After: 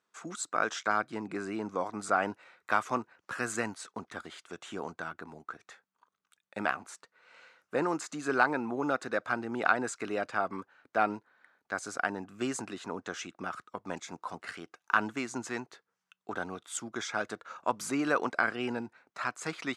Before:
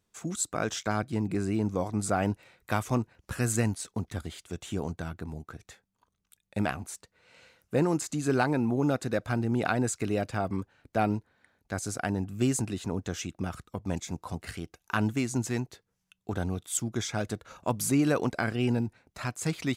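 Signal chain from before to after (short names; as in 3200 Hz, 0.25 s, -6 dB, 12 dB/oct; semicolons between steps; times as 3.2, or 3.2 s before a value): BPF 280–7500 Hz; bell 1300 Hz +10.5 dB 1.2 oct; gain -4 dB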